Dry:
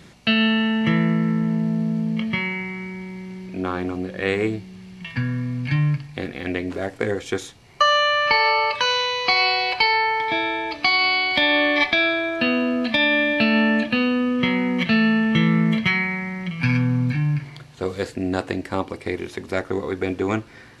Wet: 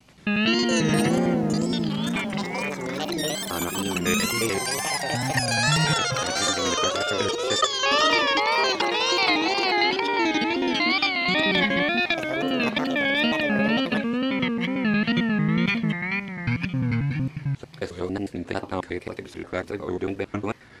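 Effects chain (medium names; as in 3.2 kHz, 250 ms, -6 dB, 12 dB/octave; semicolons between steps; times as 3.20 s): slices played last to first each 90 ms, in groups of 3; ever faster or slower copies 286 ms, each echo +7 st, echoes 3; wow and flutter 120 cents; trim -4 dB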